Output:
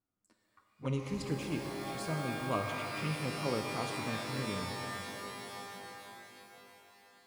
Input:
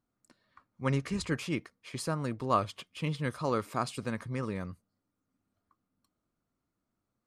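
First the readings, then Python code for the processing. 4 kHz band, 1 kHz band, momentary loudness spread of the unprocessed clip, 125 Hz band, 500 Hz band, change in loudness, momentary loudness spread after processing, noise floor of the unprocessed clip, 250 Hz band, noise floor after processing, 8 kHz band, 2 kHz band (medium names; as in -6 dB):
+2.0 dB, -3.0 dB, 8 LU, -3.0 dB, -2.5 dB, -3.5 dB, 15 LU, -85 dBFS, -2.5 dB, -77 dBFS, 0.0 dB, +1.5 dB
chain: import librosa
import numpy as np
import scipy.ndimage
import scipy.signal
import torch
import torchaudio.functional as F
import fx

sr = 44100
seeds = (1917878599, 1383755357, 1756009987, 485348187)

y = fx.env_flanger(x, sr, rest_ms=10.6, full_db=-28.5)
y = fx.rev_shimmer(y, sr, seeds[0], rt60_s=3.9, semitones=12, shimmer_db=-2, drr_db=3.0)
y = y * librosa.db_to_amplitude(-4.0)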